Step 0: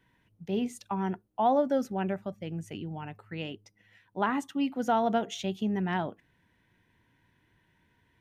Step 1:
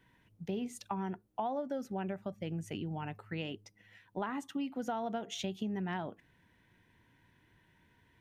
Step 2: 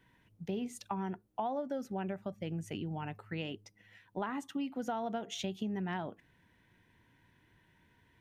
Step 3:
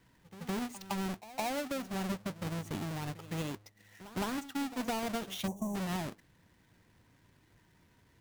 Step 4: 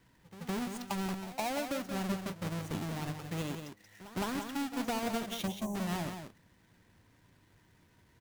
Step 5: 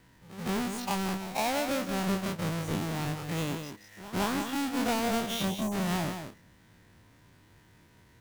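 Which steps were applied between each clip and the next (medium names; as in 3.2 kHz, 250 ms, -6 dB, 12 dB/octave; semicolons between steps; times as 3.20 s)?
compression 6:1, threshold -35 dBFS, peak gain reduction 14 dB; trim +1 dB
no audible change
square wave that keeps the level; pre-echo 162 ms -16 dB; time-frequency box 5.47–5.75 s, 1.1–5.6 kHz -27 dB; trim -3 dB
delay 179 ms -7.5 dB
every event in the spectrogram widened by 60 ms; trim +2 dB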